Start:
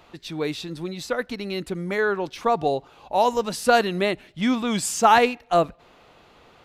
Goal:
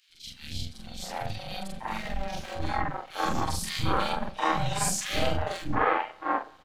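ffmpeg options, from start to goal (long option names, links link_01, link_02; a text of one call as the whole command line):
ffmpeg -i in.wav -filter_complex "[0:a]afftfilt=real='re':imag='-im':win_size=4096:overlap=0.75,asplit=2[link_01][link_02];[link_02]aecho=0:1:92|184|276:0.0891|0.0383|0.0165[link_03];[link_01][link_03]amix=inputs=2:normalize=0,acontrast=79,aeval=exprs='val(0)*sin(2*PI*390*n/s)':channel_layout=same,acrossover=split=2800[link_04][link_05];[link_04]aeval=exprs='max(val(0),0)':channel_layout=same[link_06];[link_06][link_05]amix=inputs=2:normalize=0,acrossover=split=310|2200[link_07][link_08][link_09];[link_07]adelay=150[link_10];[link_08]adelay=750[link_11];[link_10][link_11][link_09]amix=inputs=3:normalize=0,volume=-1.5dB" out.wav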